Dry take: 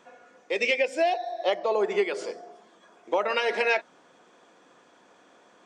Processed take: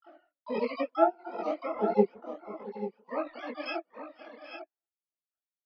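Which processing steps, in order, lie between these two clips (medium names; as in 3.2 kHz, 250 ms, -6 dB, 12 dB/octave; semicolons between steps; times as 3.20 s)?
formants replaced by sine waves; distance through air 460 m; comb 4.7 ms, depth 66%; in parallel at +1.5 dB: compression 16:1, threshold -35 dBFS, peak gain reduction 24 dB; on the sum: gate -56 dBFS, range -55 dB; multi-tap echo 498/779/842 ms -19/-16/-10 dB; dynamic bell 1.3 kHz, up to -3 dB, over -47 dBFS, Q 3.4; transient shaper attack +1 dB, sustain -12 dB; reverb removal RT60 1.2 s; harmony voices -12 st -5 dB, +4 st -9 dB, +12 st -9 dB; detune thickener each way 52 cents; trim -4 dB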